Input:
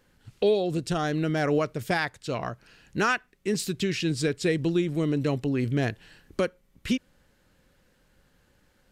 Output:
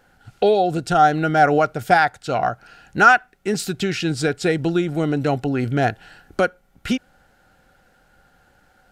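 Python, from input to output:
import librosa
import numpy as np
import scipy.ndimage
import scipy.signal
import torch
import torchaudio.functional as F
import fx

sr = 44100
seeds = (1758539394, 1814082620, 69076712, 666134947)

y = fx.small_body(x, sr, hz=(760.0, 1400.0), ring_ms=30, db=16)
y = y * librosa.db_to_amplitude(4.0)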